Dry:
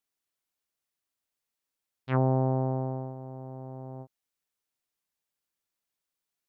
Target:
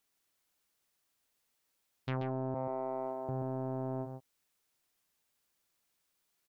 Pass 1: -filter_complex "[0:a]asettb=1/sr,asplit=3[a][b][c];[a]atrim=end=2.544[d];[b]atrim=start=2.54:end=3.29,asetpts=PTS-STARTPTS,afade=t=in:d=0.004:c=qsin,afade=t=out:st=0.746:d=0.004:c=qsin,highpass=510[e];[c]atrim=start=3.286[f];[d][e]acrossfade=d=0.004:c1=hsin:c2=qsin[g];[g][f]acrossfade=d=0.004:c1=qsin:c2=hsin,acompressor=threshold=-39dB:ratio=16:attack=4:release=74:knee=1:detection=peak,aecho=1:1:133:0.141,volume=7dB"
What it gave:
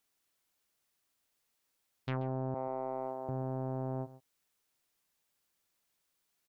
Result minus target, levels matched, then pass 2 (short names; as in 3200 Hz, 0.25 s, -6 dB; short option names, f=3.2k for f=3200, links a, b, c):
echo-to-direct -9.5 dB
-filter_complex "[0:a]asettb=1/sr,asplit=3[a][b][c];[a]atrim=end=2.544[d];[b]atrim=start=2.54:end=3.29,asetpts=PTS-STARTPTS,afade=t=in:d=0.004:c=qsin,afade=t=out:st=0.746:d=0.004:c=qsin,highpass=510[e];[c]atrim=start=3.286[f];[d][e]acrossfade=d=0.004:c1=hsin:c2=qsin[g];[g][f]acrossfade=d=0.004:c1=qsin:c2=hsin,acompressor=threshold=-39dB:ratio=16:attack=4:release=74:knee=1:detection=peak,aecho=1:1:133:0.422,volume=7dB"